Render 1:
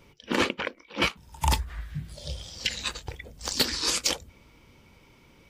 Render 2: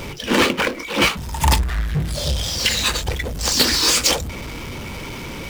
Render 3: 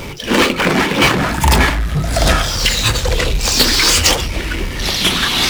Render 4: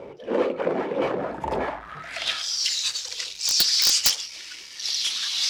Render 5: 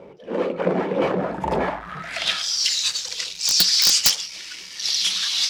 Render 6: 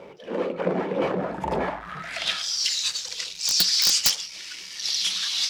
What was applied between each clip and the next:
power-law waveshaper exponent 0.5; trim +4.5 dB
ever faster or slower copies 245 ms, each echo -5 st, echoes 2; trim +3.5 dB
band-pass sweep 520 Hz -> 5.3 kHz, 1.60–2.46 s; integer overflow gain 7 dB; trim -3 dB
peaking EQ 180 Hz +13 dB 0.22 oct; level rider gain up to 8.5 dB; trim -4 dB
tape noise reduction on one side only encoder only; trim -3.5 dB

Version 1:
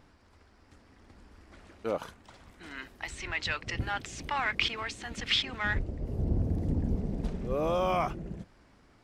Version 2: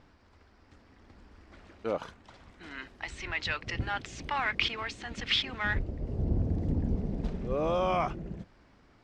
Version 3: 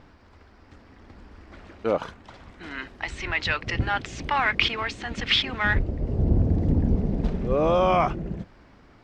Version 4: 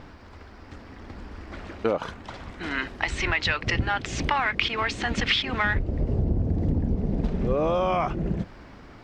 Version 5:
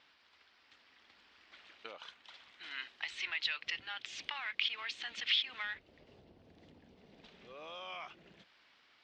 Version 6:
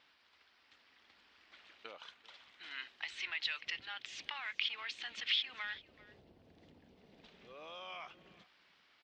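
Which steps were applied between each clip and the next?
low-pass 5.9 kHz 12 dB/octave
treble shelf 4.5 kHz -5.5 dB; trim +8 dB
compression 6:1, threshold -28 dBFS, peak gain reduction 12.5 dB; trim +7 dB
band-pass filter 3.4 kHz, Q 1.9; trim -5.5 dB
delay 393 ms -20.5 dB; trim -2 dB

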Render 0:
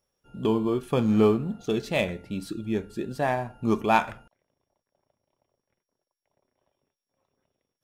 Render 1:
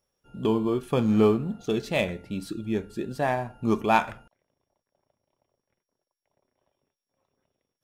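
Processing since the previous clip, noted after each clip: no audible change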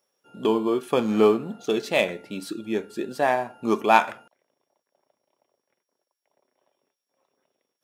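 high-pass 300 Hz 12 dB/octave; trim +4.5 dB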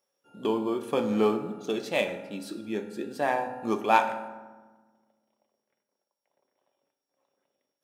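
reverberation RT60 1.3 s, pre-delay 3 ms, DRR 6.5 dB; trim -5.5 dB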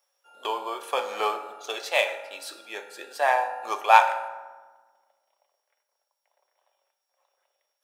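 high-pass 630 Hz 24 dB/octave; trim +6.5 dB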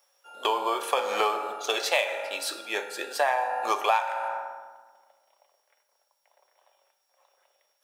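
compression 8:1, threshold -28 dBFS, peak gain reduction 18 dB; trim +7 dB

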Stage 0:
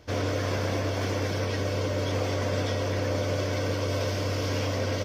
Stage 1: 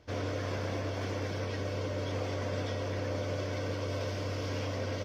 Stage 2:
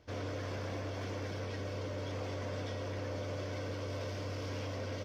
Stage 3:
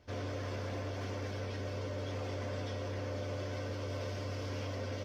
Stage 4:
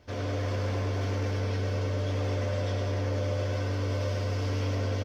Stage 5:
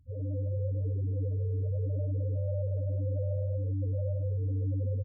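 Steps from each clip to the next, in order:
treble shelf 8.3 kHz -9.5 dB; trim -6.5 dB
saturation -29 dBFS, distortion -18 dB; trim -3 dB
comb of notches 160 Hz; trim +1 dB
feedback delay 103 ms, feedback 58%, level -6 dB; trim +5 dB
loudest bins only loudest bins 4

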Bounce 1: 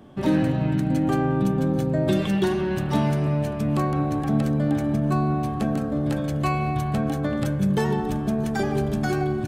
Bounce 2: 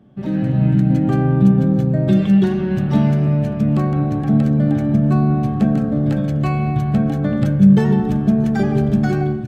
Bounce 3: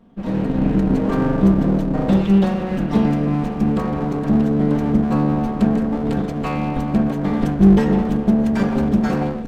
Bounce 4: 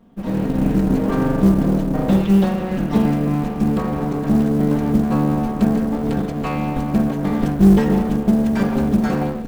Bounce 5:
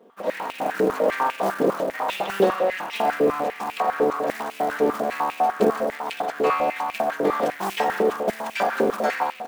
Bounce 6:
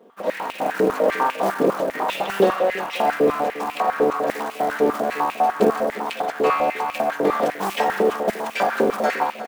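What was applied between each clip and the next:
treble shelf 4.2 kHz -9 dB; level rider gain up to 11.5 dB; graphic EQ with 31 bands 125 Hz +10 dB, 200 Hz +10 dB, 1 kHz -7 dB, 10 kHz -5 dB; trim -6.5 dB
comb filter that takes the minimum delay 4.3 ms
short-mantissa float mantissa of 4-bit
step-sequenced high-pass 10 Hz 440–2500 Hz
delay 351 ms -15.5 dB; trim +2 dB

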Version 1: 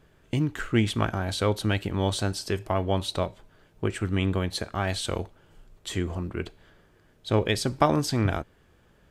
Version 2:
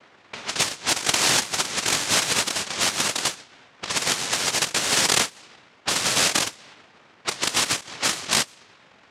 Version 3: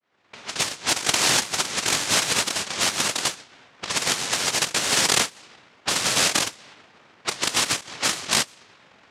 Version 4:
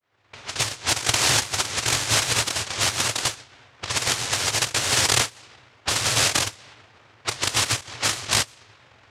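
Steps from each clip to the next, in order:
noise-vocoded speech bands 1; compressor with a negative ratio -31 dBFS, ratio -0.5; level-controlled noise filter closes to 1.9 kHz, open at -28.5 dBFS; trim +8 dB
fade-in on the opening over 0.76 s
resonant low shelf 140 Hz +7 dB, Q 3

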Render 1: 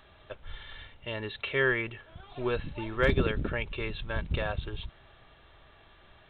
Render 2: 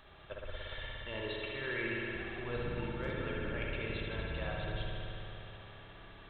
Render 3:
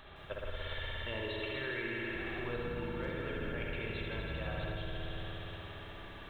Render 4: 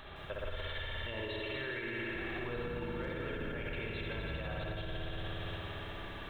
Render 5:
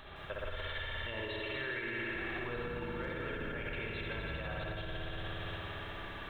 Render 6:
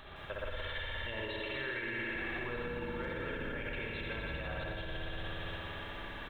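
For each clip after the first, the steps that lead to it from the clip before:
reverse; compression 6:1, threshold -37 dBFS, peak gain reduction 16 dB; reverse; spring tank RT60 3.5 s, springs 58 ms, chirp 25 ms, DRR -4 dB; trim -2 dB
compression 6:1, threshold -40 dBFS, peak gain reduction 8 dB; bit-crushed delay 162 ms, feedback 55%, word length 12-bit, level -8.5 dB; trim +4.5 dB
peak limiter -34.5 dBFS, peak gain reduction 8.5 dB; trim +4 dB
dynamic bell 1.5 kHz, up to +4 dB, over -52 dBFS, Q 0.75; trim -1.5 dB
delay 120 ms -11 dB

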